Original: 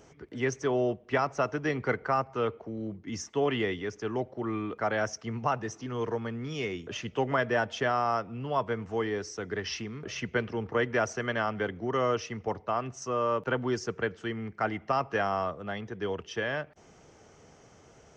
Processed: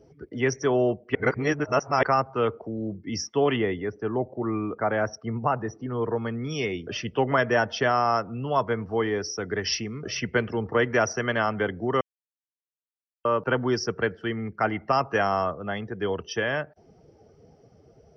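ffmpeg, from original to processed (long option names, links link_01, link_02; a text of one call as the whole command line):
ffmpeg -i in.wav -filter_complex "[0:a]asettb=1/sr,asplit=3[link_01][link_02][link_03];[link_01]atrim=end=3.564[link_04];[link_02]atrim=start=3.56:end=6.16,asetpts=PTS-STARTPTS,afade=type=in:duration=0.004:curve=qsin,afade=type=out:start_time=2.596:duration=0.004:curve=qsin,lowpass=frequency=1600:poles=1[link_05];[link_03]atrim=start=6.156[link_06];[link_04][link_05]acrossfade=duration=0.004:curve1=hsin:curve2=qsin[link_07];[link_07][link_06]acrossfade=duration=0.004:curve1=qsin:curve2=hsin,asplit=5[link_08][link_09][link_10][link_11][link_12];[link_08]atrim=end=1.152[link_13];[link_09]atrim=start=1.148:end=2.032,asetpts=PTS-STARTPTS,areverse[link_14];[link_10]atrim=start=2.028:end=12.01,asetpts=PTS-STARTPTS,afade=type=out:start_time=9.978:duration=0.004:curve=hsin[link_15];[link_11]atrim=start=12.01:end=13.25,asetpts=PTS-STARTPTS,volume=0[link_16];[link_12]atrim=start=13.25,asetpts=PTS-STARTPTS,afade=type=in:duration=0.004:curve=hsin[link_17];[link_13][link_14]acrossfade=duration=0.004:curve1=hsin:curve2=hsin[link_18];[link_15][link_16][link_17]concat=n=3:v=0:a=1[link_19];[link_18][link_19]acrossfade=duration=0.004:curve1=hsin:curve2=hsin,afftdn=noise_reduction=18:noise_floor=-50,superequalizer=14b=2:15b=0.251,volume=5dB" out.wav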